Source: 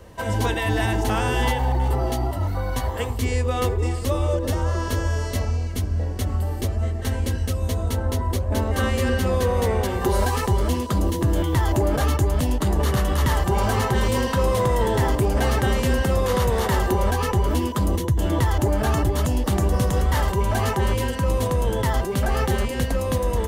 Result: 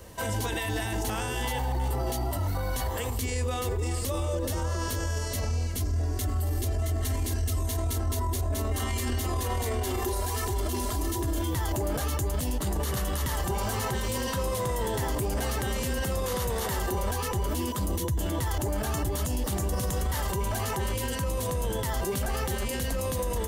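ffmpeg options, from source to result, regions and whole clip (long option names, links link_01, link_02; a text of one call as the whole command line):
ffmpeg -i in.wav -filter_complex "[0:a]asettb=1/sr,asplit=3[link_01][link_02][link_03];[link_01]atrim=end=5.804[link_04];[link_02]atrim=start=5.8:end=11.51,asetpts=PTS-STARTPTS,afade=type=in:duration=0.004:curve=qsin,afade=type=out:start_time=5.706:duration=0.004:curve=qsin,aecho=1:1:2.9:0.85,atrim=end_sample=251811,aecho=1:1:668:0.422,atrim=end_sample=251811[link_05];[link_03]atrim=start=11.506[link_06];[link_04][link_05]acrossfade=duration=0.004:curve1=hsin:curve2=qsin[link_07];[link_07][link_06]acrossfade=duration=0.004:curve1=qsin:curve2=hsin,highshelf=frequency=4600:gain=12,alimiter=limit=-19dB:level=0:latency=1:release=21,volume=-2.5dB" out.wav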